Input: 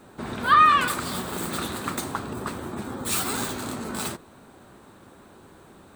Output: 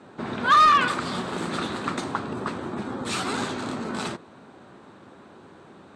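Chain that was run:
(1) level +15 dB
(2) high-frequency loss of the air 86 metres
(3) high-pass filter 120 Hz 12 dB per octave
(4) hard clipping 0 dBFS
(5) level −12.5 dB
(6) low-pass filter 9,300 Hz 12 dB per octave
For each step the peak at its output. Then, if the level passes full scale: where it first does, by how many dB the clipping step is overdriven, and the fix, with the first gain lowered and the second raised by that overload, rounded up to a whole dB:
+8.5, +8.0, +8.0, 0.0, −12.5, −12.0 dBFS
step 1, 8.0 dB
step 1 +7 dB, step 5 −4.5 dB

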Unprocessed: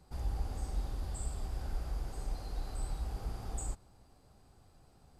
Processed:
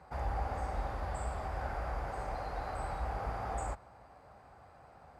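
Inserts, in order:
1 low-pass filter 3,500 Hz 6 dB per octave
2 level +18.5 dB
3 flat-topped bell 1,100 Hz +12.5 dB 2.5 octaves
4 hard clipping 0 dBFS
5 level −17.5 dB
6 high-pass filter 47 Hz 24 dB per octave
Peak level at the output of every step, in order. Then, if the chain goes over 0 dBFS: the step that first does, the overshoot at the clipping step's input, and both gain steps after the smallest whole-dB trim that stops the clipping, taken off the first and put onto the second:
−24.0, −5.5, −4.0, −4.0, −21.5, −24.5 dBFS
no step passes full scale

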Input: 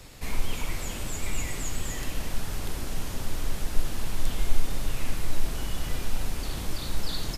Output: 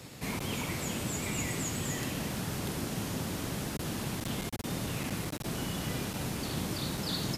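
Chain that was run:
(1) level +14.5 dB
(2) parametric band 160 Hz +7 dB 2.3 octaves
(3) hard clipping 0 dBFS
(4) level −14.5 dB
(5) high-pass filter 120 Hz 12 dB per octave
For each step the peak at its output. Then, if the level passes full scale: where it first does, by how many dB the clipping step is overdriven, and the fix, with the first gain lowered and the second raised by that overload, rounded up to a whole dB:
+7.5, +8.0, 0.0, −14.5, −21.0 dBFS
step 1, 8.0 dB
step 1 +6.5 dB, step 4 −6.5 dB

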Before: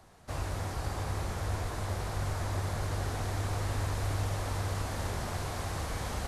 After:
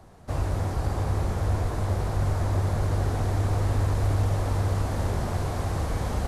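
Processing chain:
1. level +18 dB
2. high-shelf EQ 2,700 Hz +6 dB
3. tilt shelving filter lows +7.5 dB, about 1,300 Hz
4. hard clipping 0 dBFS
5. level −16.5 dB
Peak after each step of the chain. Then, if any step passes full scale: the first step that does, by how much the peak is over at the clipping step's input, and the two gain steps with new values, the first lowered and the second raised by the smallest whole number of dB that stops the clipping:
−3.0, −2.5, +3.5, 0.0, −16.5 dBFS
step 3, 3.5 dB
step 1 +14 dB, step 5 −12.5 dB

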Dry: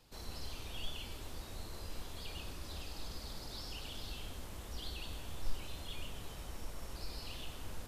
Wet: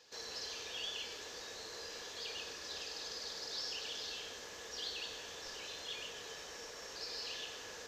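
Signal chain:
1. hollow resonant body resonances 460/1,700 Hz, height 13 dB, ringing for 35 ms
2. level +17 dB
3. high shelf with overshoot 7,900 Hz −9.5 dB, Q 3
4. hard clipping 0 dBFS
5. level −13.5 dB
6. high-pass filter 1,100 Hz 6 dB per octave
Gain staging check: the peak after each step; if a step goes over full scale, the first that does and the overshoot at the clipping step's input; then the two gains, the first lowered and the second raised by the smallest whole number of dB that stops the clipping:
−22.5, −5.5, −5.5, −5.5, −19.0, −29.5 dBFS
no step passes full scale

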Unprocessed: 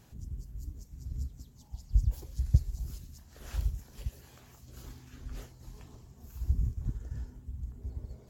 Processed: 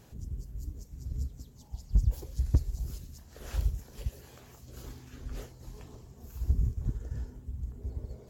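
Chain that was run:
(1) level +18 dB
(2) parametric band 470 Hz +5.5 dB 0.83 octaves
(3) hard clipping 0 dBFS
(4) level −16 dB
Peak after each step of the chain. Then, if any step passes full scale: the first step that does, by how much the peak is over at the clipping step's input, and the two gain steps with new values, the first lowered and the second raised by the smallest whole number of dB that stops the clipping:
+8.0, +8.0, 0.0, −16.0 dBFS
step 1, 8.0 dB
step 1 +10 dB, step 4 −8 dB

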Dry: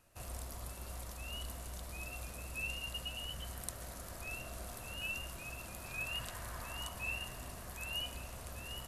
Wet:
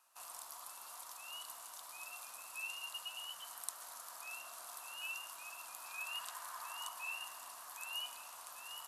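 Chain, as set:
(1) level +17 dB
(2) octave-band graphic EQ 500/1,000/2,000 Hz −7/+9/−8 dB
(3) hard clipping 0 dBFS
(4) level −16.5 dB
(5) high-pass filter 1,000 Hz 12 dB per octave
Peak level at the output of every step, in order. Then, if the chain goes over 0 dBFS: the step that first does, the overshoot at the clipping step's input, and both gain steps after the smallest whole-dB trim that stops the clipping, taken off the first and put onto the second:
−2.0, −2.0, −2.0, −18.5, −18.5 dBFS
no step passes full scale

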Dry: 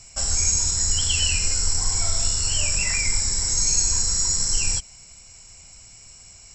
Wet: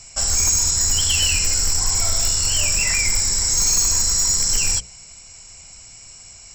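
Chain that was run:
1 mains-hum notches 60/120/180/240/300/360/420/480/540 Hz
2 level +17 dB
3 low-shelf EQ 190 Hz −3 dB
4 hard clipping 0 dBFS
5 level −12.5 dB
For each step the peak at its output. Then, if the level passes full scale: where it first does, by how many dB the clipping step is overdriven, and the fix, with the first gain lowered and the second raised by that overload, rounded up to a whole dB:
−8.5, +8.5, +8.0, 0.0, −12.5 dBFS
step 2, 8.0 dB
step 2 +9 dB, step 5 −4.5 dB

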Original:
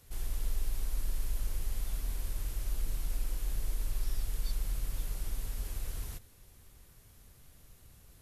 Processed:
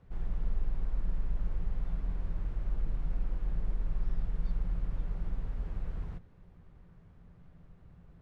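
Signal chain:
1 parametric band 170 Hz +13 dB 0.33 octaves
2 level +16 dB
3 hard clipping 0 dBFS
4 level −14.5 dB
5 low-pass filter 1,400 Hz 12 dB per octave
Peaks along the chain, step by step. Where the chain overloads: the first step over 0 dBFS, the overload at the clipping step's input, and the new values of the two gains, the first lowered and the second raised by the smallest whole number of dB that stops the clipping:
−21.5, −5.5, −5.5, −20.0, −20.5 dBFS
no step passes full scale

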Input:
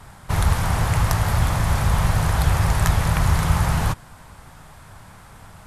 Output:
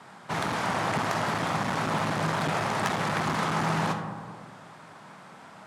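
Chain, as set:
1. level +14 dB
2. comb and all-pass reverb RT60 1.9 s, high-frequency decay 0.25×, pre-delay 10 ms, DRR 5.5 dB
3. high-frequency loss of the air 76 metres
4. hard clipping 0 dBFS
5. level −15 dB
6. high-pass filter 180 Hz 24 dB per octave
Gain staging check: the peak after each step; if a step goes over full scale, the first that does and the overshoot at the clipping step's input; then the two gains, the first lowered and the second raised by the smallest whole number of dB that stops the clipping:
+12.0, +11.5, +10.0, 0.0, −15.0, −11.5 dBFS
step 1, 10.0 dB
step 1 +4 dB, step 5 −5 dB

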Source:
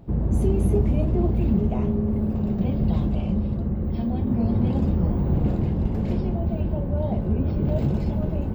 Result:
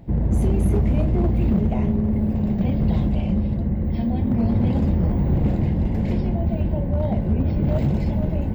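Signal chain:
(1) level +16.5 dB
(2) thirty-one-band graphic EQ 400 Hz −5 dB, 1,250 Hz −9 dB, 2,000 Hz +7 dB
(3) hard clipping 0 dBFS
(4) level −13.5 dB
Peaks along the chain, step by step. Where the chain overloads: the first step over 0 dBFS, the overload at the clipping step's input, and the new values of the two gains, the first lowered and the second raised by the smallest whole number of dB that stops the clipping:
+8.0, +7.5, 0.0, −13.5 dBFS
step 1, 7.5 dB
step 1 +8.5 dB, step 4 −5.5 dB

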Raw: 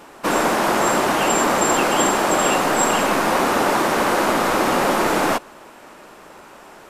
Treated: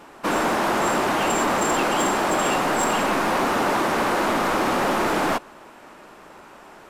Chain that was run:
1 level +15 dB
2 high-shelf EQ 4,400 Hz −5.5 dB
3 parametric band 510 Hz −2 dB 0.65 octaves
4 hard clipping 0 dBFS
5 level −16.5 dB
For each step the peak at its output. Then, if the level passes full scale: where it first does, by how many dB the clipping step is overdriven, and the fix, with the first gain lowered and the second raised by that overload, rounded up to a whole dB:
+10.5, +10.0, +9.5, 0.0, −16.5 dBFS
step 1, 9.5 dB
step 1 +5 dB, step 5 −6.5 dB

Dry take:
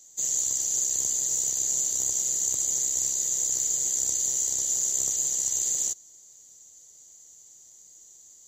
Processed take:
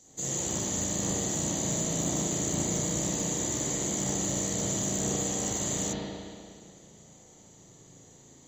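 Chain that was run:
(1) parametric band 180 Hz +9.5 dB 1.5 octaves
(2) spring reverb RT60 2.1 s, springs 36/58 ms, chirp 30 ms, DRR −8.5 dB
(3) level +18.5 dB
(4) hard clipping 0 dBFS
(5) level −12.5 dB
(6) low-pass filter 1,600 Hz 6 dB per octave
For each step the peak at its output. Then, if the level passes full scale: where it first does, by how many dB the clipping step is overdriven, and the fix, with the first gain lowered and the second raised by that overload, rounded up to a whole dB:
−11.5, −11.5, +7.0, 0.0, −12.5, −17.5 dBFS
step 3, 7.0 dB
step 3 +11.5 dB, step 5 −5.5 dB

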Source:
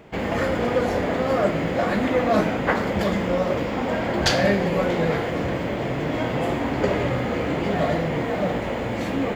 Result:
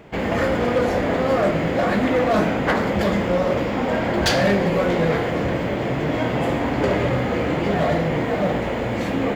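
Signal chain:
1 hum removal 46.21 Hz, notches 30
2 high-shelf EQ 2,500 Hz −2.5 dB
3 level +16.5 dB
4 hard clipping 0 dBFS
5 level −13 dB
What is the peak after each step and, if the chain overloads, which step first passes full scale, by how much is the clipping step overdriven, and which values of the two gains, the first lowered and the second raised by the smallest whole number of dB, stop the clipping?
−5.5, −7.0, +9.5, 0.0, −13.0 dBFS
step 3, 9.5 dB
step 3 +6.5 dB, step 5 −3 dB

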